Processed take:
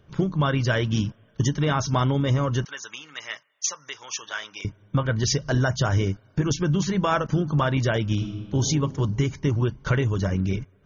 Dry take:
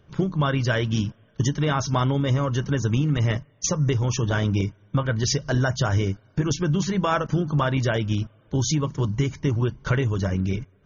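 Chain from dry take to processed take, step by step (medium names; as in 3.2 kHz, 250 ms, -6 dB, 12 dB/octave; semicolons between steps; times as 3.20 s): 2.65–4.65 s: high-pass 1.3 kHz 12 dB/octave; 8.13–8.58 s: reverb throw, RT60 1.7 s, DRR 3.5 dB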